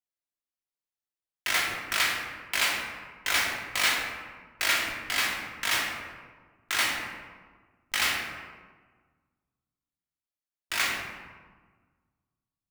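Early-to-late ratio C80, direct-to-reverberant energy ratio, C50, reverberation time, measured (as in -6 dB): 4.5 dB, -2.0 dB, 2.5 dB, 1.5 s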